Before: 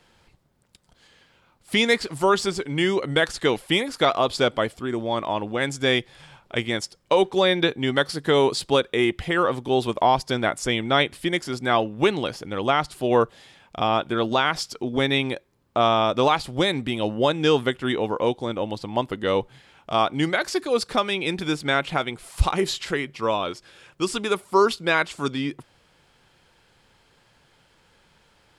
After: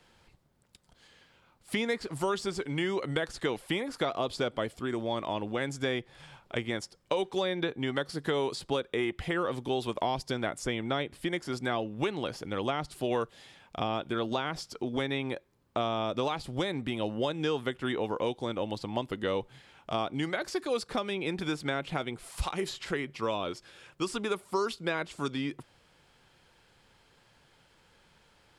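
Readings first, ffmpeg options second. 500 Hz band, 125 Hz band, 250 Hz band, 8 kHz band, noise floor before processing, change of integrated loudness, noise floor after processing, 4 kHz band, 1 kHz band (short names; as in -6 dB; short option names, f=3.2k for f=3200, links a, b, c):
-9.5 dB, -7.5 dB, -8.0 dB, -9.5 dB, -61 dBFS, -9.5 dB, -65 dBFS, -11.0 dB, -11.0 dB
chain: -filter_complex "[0:a]acrossover=split=610|1800[a][b][c];[a]acompressor=threshold=-27dB:ratio=4[d];[b]acompressor=threshold=-33dB:ratio=4[e];[c]acompressor=threshold=-36dB:ratio=4[f];[d][e][f]amix=inputs=3:normalize=0,volume=-3.5dB"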